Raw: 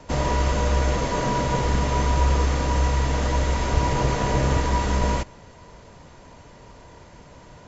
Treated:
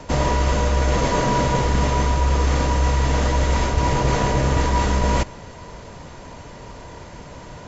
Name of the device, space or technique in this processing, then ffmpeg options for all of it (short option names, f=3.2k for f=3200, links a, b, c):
compression on the reversed sound: -af "areverse,acompressor=threshold=-23dB:ratio=6,areverse,volume=8dB"